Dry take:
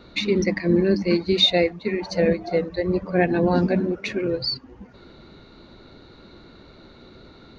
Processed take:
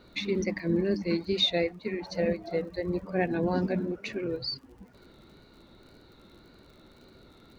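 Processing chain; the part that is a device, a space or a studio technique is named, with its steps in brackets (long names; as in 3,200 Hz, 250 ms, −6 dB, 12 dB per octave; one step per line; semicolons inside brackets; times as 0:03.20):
vinyl LP (tape wow and flutter; surface crackle 54 per second −41 dBFS; pink noise bed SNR 45 dB)
level −8 dB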